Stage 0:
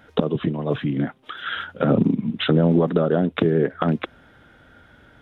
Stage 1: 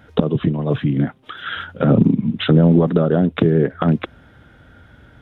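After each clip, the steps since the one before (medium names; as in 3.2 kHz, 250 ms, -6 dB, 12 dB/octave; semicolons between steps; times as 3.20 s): peaking EQ 82 Hz +8.5 dB 2.5 oct; trim +1 dB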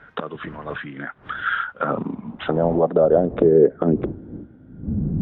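wind noise 97 Hz -21 dBFS; band-pass sweep 1.5 kHz -> 210 Hz, 1.39–5.01 s; trim +6.5 dB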